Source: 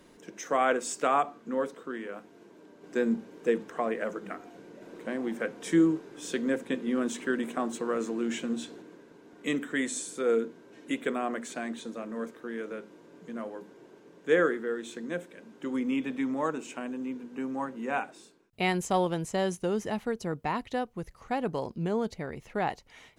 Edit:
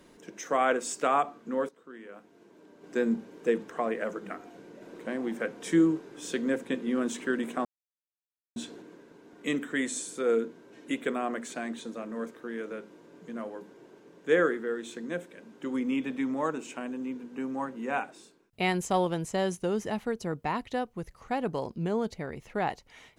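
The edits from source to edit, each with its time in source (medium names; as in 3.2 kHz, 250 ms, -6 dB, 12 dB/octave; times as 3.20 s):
1.69–2.93 s: fade in, from -15.5 dB
7.65–8.56 s: mute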